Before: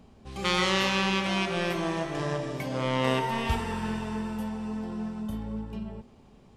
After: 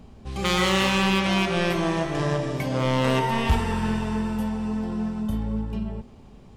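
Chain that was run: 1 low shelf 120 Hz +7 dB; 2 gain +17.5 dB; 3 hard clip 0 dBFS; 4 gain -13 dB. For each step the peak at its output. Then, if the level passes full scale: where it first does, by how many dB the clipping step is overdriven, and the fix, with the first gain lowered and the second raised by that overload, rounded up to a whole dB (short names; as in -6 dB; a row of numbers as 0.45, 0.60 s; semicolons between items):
-9.0, +8.5, 0.0, -13.0 dBFS; step 2, 8.5 dB; step 2 +8.5 dB, step 4 -4 dB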